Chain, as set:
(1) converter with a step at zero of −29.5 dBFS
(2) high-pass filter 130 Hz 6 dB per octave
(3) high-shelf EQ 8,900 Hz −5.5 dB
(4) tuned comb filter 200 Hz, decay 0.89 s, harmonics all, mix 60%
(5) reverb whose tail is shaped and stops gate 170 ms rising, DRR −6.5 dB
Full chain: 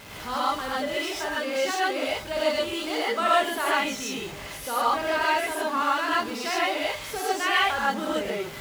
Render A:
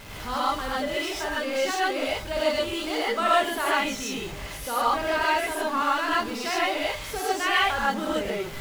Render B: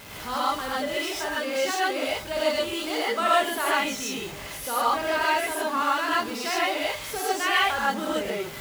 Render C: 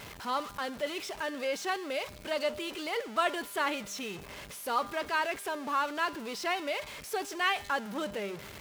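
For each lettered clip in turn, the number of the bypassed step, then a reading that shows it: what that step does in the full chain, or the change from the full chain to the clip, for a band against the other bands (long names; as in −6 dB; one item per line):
2, 125 Hz band +3.5 dB
3, 8 kHz band +2.0 dB
5, change in integrated loudness −7.5 LU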